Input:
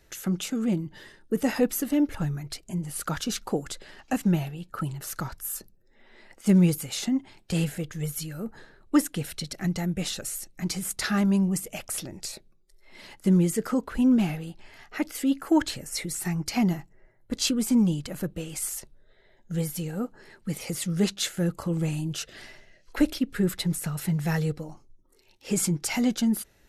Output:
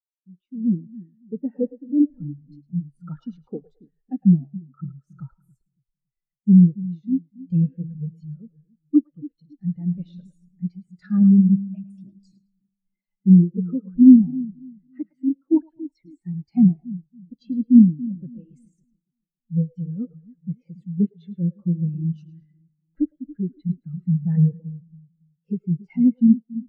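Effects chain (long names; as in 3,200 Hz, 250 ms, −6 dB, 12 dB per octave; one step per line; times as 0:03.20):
treble cut that deepens with the level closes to 2,000 Hz, closed at −21.5 dBFS
automatic gain control gain up to 15.5 dB
echo with a time of its own for lows and highs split 390 Hz, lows 280 ms, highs 108 ms, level −7 dB
every bin expanded away from the loudest bin 2.5 to 1
level −1 dB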